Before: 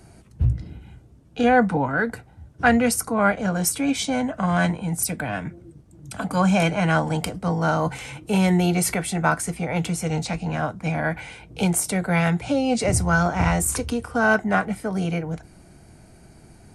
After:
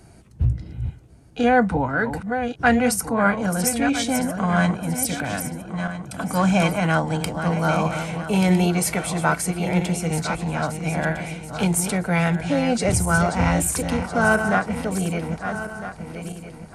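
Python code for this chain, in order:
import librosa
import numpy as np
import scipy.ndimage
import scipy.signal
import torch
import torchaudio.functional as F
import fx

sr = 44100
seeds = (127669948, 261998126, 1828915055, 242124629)

y = fx.reverse_delay_fb(x, sr, ms=653, feedback_pct=54, wet_db=-8.0)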